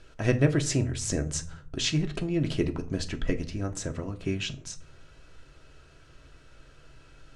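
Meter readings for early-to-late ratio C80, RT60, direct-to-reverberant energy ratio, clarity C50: 20.5 dB, 0.50 s, 5.0 dB, 16.5 dB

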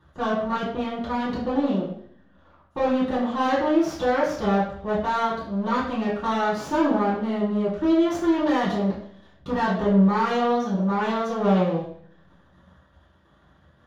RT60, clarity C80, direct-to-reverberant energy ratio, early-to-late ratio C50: 0.55 s, 7.5 dB, −11.0 dB, 3.5 dB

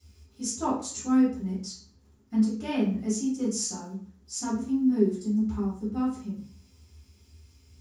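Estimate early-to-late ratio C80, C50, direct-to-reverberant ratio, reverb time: 10.5 dB, 4.5 dB, −12.0 dB, 0.45 s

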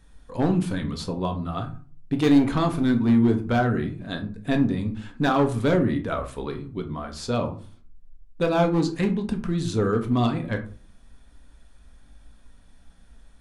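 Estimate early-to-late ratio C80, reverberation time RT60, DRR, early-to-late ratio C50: 17.0 dB, 0.45 s, 4.5 dB, 12.0 dB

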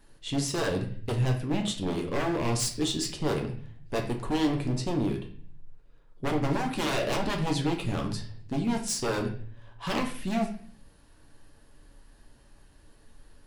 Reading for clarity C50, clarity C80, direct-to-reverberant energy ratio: 9.0 dB, 13.0 dB, 2.0 dB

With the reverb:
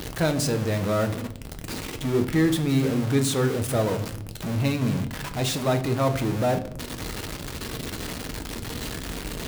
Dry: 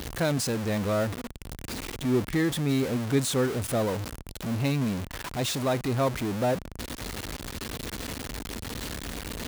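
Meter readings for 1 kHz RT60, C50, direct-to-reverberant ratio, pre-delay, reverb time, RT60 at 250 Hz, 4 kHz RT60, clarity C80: 0.55 s, 13.0 dB, 6.0 dB, 6 ms, 0.65 s, 1.2 s, 0.45 s, 17.0 dB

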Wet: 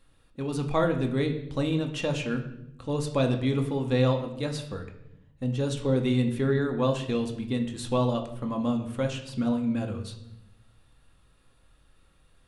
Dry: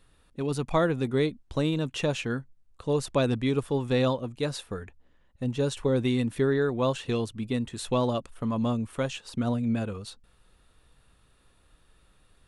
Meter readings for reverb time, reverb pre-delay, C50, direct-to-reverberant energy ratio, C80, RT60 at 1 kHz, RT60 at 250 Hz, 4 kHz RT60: 0.80 s, 4 ms, 9.5 dB, 3.5 dB, 12.5 dB, 0.70 s, 1.3 s, 0.70 s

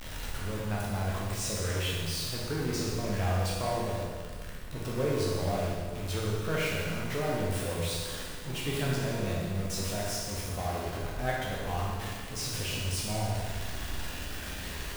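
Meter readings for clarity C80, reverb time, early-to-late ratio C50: 1.0 dB, 1.7 s, −1.0 dB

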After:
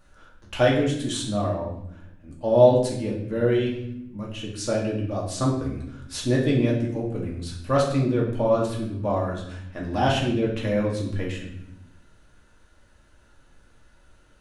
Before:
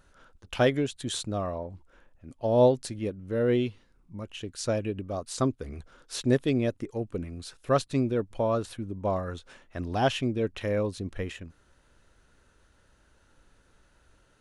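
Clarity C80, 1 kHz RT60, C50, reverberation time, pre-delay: 8.0 dB, 0.70 s, 5.0 dB, 0.80 s, 3 ms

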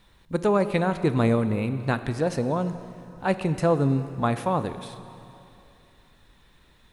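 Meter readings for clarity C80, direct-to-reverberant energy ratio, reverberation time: 12.5 dB, 11.0 dB, 2.8 s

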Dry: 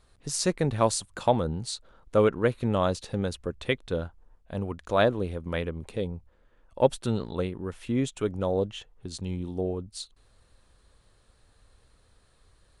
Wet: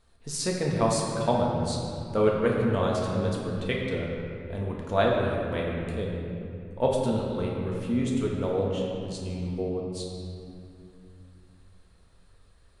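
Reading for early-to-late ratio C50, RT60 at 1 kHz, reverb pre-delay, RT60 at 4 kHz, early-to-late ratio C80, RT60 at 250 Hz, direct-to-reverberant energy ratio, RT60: 0.5 dB, 2.5 s, 4 ms, 1.7 s, 1.5 dB, 3.8 s, −2.5 dB, 2.6 s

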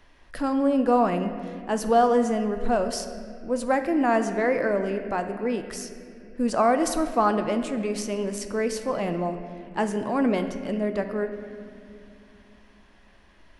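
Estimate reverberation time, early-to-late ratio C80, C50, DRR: 2.6 s, 9.5 dB, 8.5 dB, 7.0 dB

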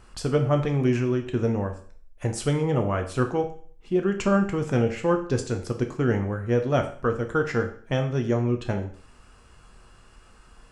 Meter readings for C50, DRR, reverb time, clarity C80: 10.5 dB, 4.5 dB, 0.45 s, 14.5 dB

